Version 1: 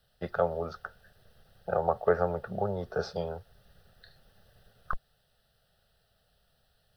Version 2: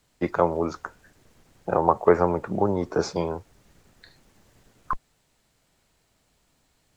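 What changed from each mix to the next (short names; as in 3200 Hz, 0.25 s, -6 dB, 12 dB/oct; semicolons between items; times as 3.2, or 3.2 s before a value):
first voice +3.5 dB; master: remove fixed phaser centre 1500 Hz, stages 8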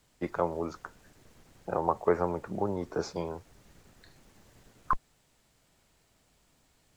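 first voice -8.0 dB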